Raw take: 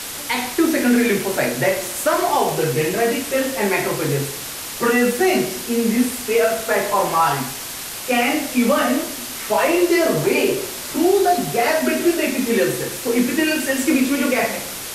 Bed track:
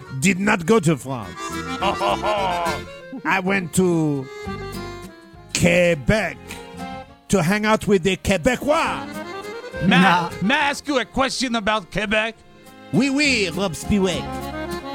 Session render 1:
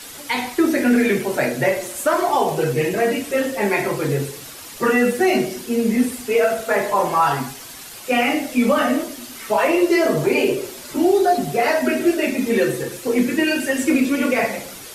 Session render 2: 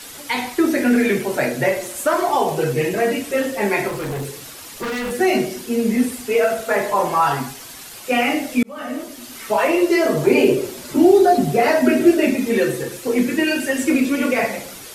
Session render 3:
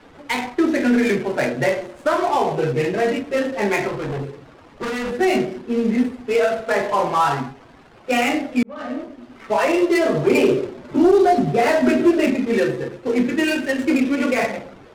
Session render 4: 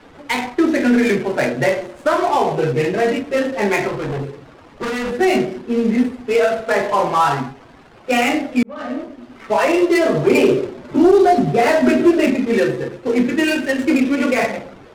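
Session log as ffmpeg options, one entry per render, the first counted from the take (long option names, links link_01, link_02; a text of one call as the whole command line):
ffmpeg -i in.wav -af "afftdn=noise_reduction=9:noise_floor=-30" out.wav
ffmpeg -i in.wav -filter_complex "[0:a]asettb=1/sr,asplit=3[link_01][link_02][link_03];[link_01]atrim=end=3.884[link_04];[link_02]atrim=start=3.88:end=5.11,asetpts=PTS-STARTPTS,afade=type=in:duration=0.004:curve=qsin,afade=type=out:start_time=1.226:duration=0.004:curve=qsin,asoftclip=type=hard:threshold=-23dB[link_05];[link_03]atrim=start=5.106[link_06];[link_04][link_05]acrossfade=duration=0.004:curve1=hsin:curve2=qsin[link_07];[link_07][link_06]acrossfade=duration=0.004:curve1=qsin:curve2=hsin,asettb=1/sr,asplit=3[link_08][link_09][link_10];[link_08]atrim=end=10.274[link_11];[link_09]atrim=start=10.27:end=12.36,asetpts=PTS-STARTPTS,afade=type=in:duration=0.004:curve=qsin,afade=type=out:start_time=2.086:duration=0.004:curve=qsin,equalizer=frequency=160:width=0.37:gain=6.5[link_12];[link_10]atrim=start=12.356[link_13];[link_11][link_12]acrossfade=duration=0.004:curve1=hsin:curve2=qsin[link_14];[link_14][link_13]acrossfade=duration=0.004:curve1=qsin:curve2=hsin,asplit=2[link_15][link_16];[link_15]atrim=end=8.63,asetpts=PTS-STARTPTS,afade=type=out:start_time=8.626:duration=0.004:curve=hsin[link_17];[link_16]atrim=start=8.63,asetpts=PTS-STARTPTS,afade=type=in:duration=0.72[link_18];[link_17][link_18]concat=n=2:v=0:a=1" out.wav
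ffmpeg -i in.wav -af "adynamicsmooth=sensitivity=3:basefreq=850,asoftclip=type=tanh:threshold=-6.5dB" out.wav
ffmpeg -i in.wav -af "volume=2.5dB" out.wav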